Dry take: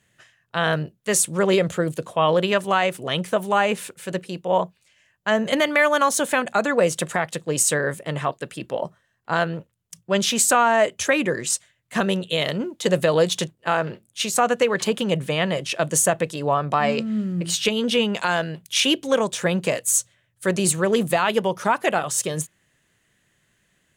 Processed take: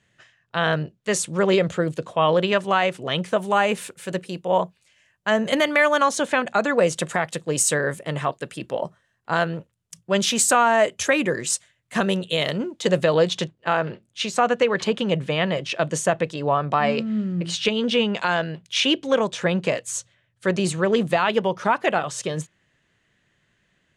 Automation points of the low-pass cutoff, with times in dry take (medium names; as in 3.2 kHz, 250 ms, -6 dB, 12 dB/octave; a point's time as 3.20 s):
3.20 s 6.2 kHz
3.61 s 12 kHz
5.66 s 12 kHz
6.31 s 5 kHz
7.27 s 11 kHz
12.40 s 11 kHz
13.26 s 4.9 kHz